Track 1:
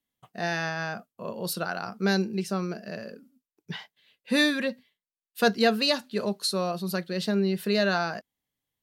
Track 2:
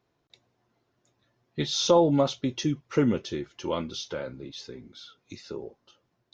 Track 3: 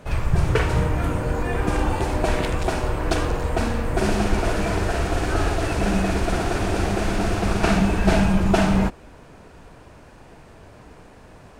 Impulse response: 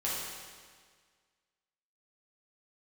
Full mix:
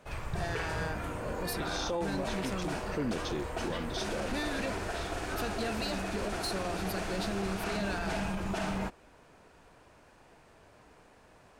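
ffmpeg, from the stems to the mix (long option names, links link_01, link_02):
-filter_complex "[0:a]acompressor=threshold=-25dB:ratio=6,asoftclip=type=tanh:threshold=-24.5dB,volume=-4dB,asplit=2[link_01][link_02];[1:a]volume=-2dB[link_03];[2:a]lowshelf=frequency=320:gain=-8.5,volume=-9dB[link_04];[link_02]apad=whole_len=279157[link_05];[link_03][link_05]sidechaincompress=threshold=-45dB:ratio=8:attack=39:release=163[link_06];[link_01][link_06][link_04]amix=inputs=3:normalize=0,alimiter=level_in=0.5dB:limit=-24dB:level=0:latency=1:release=34,volume=-0.5dB"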